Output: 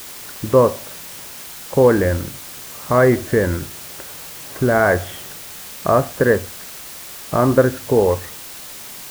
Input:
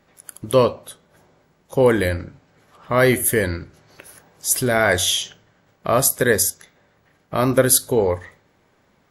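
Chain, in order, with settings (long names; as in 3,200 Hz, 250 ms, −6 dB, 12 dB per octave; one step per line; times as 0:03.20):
low-pass filter 1,600 Hz 24 dB per octave
in parallel at −1 dB: downward compressor, threshold −25 dBFS, peak gain reduction 14.5 dB
on the sum: bit-depth reduction 6 bits, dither triangular
level +1 dB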